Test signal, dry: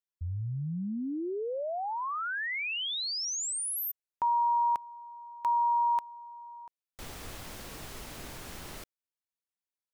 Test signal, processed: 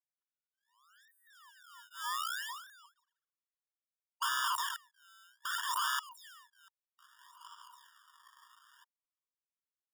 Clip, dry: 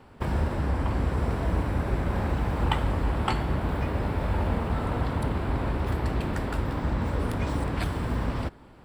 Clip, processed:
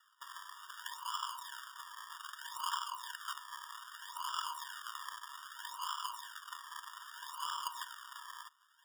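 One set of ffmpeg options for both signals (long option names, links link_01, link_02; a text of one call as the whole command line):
ffmpeg -i in.wav -filter_complex "[0:a]highpass=frequency=130:width=0.5412,highpass=frequency=130:width=1.3066,lowshelf=frequency=750:width_type=q:width=3:gain=-9,acrossover=split=1100[link_01][link_02];[link_01]acompressor=threshold=-34dB:ratio=16:attack=0.24:release=303:knee=6:detection=rms[link_03];[link_03][link_02]amix=inputs=2:normalize=0,highpass=frequency=190:width_type=q:width=0.5412,highpass=frequency=190:width_type=q:width=1.307,lowpass=frequency=2100:width_type=q:width=0.5176,lowpass=frequency=2100:width_type=q:width=0.7071,lowpass=frequency=2100:width_type=q:width=1.932,afreqshift=-120,acrusher=samples=41:mix=1:aa=0.000001:lfo=1:lforange=41:lforate=0.63,aeval=exprs='(mod(18.8*val(0)+1,2)-1)/18.8':channel_layout=same,aeval=exprs='0.0562*(cos(1*acos(clip(val(0)/0.0562,-1,1)))-cos(1*PI/2))+0.01*(cos(3*acos(clip(val(0)/0.0562,-1,1)))-cos(3*PI/2))+0.00158*(cos(6*acos(clip(val(0)/0.0562,-1,1)))-cos(6*PI/2))+0.000794*(cos(8*acos(clip(val(0)/0.0562,-1,1)))-cos(8*PI/2))':channel_layout=same,afftfilt=real='re*eq(mod(floor(b*sr/1024/940),2),1)':imag='im*eq(mod(floor(b*sr/1024/940),2),1)':win_size=1024:overlap=0.75,volume=4.5dB" out.wav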